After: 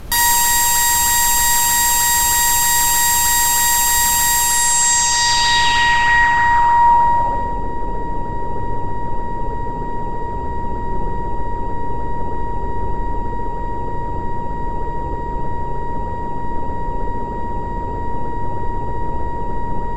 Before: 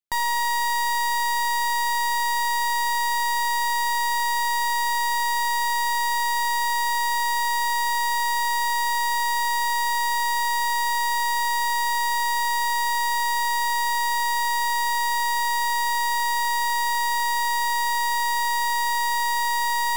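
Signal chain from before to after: in parallel at -10 dB: decimation with a swept rate 14×, swing 160% 3.2 Hz; on the sum: tilt shelf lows -9 dB, about 1400 Hz; added noise brown -33 dBFS; on a send: flutter echo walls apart 11.6 m, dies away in 1 s; on the sum: low-pass sweep 13000 Hz -> 450 Hz, 4.37–7.64; vocal rider within 4 dB 0.5 s; gain +3.5 dB

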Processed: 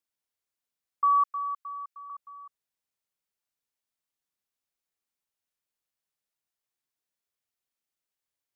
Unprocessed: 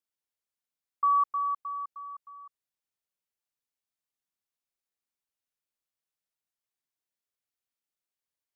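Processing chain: 1.24–2.1 HPF 1200 Hz 24 dB/oct; gain +1.5 dB

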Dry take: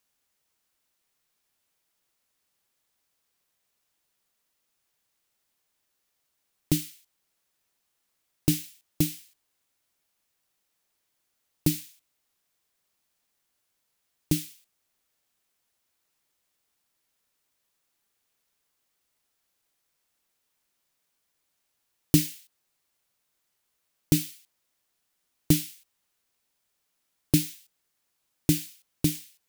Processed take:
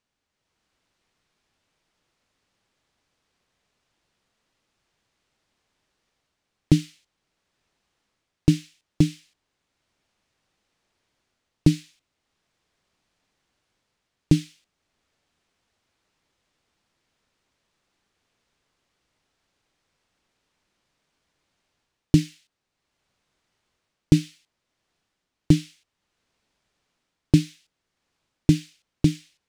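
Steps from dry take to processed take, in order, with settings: low shelf 370 Hz +6 dB; AGC gain up to 7.5 dB; air absorption 96 m

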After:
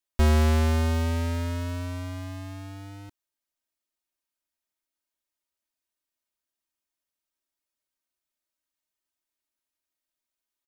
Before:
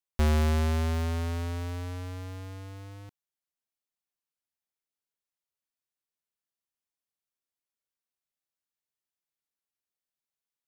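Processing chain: comb 3.2 ms, depth 84%; gain +1.5 dB

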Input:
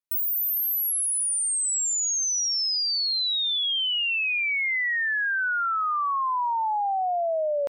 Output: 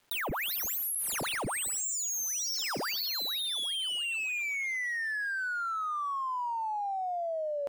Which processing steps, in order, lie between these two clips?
median filter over 9 samples; 2.48–4.95 HPF 230 Hz 12 dB/oct; thin delay 0.112 s, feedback 41%, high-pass 1800 Hz, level -17 dB; fast leveller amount 100%; gain -8 dB

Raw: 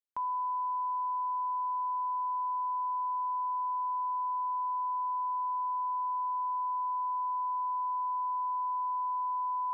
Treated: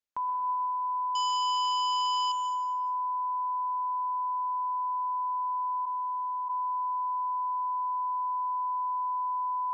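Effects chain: 1.15–2.32 half-waves squared off; plate-style reverb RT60 2.1 s, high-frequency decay 0.45×, pre-delay 0.11 s, DRR 5.5 dB; downsampling 16000 Hz; 5.85–6.48 HPF 870 Hz -> 940 Hz 24 dB/oct; gain +2 dB

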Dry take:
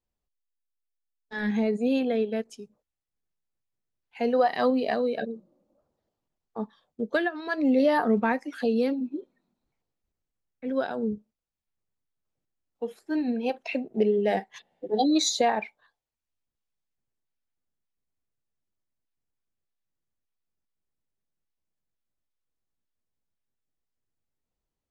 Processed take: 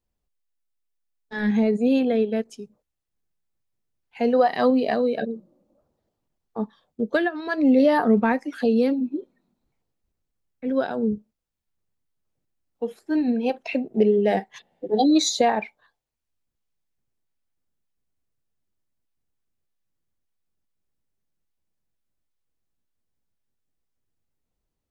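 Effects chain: low shelf 440 Hz +4.5 dB; gain +2 dB

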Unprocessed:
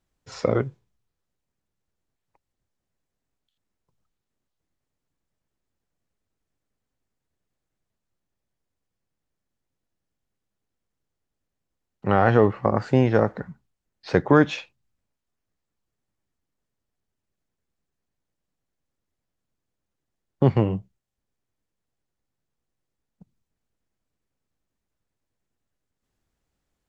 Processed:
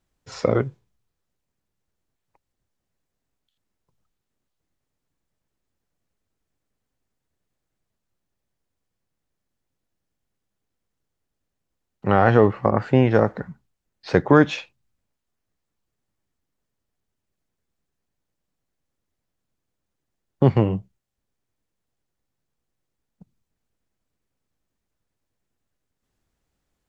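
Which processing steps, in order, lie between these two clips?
12.7–13.11 resonant high shelf 3800 Hz -7 dB, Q 1.5; gain +2 dB

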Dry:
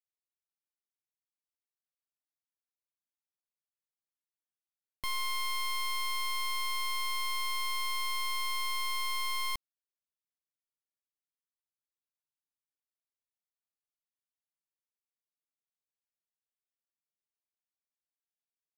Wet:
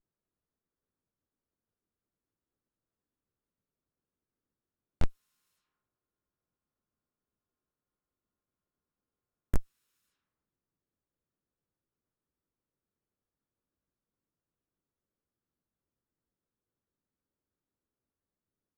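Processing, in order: minimum comb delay 0.75 ms; low-pass opened by the level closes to 480 Hz, open at -67.5 dBFS; harmoniser -4 st -15 dB, +3 st -6 dB, +5 st -2 dB; gain +16 dB

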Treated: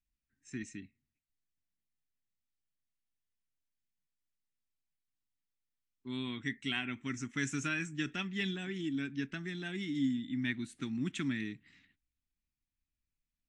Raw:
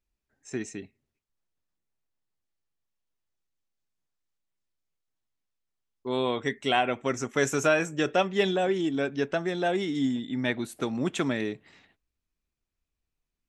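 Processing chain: EQ curve 290 Hz 0 dB, 530 Hz -28 dB, 1900 Hz 0 dB, 5300 Hz -4 dB; gain -5 dB; AAC 96 kbps 22050 Hz

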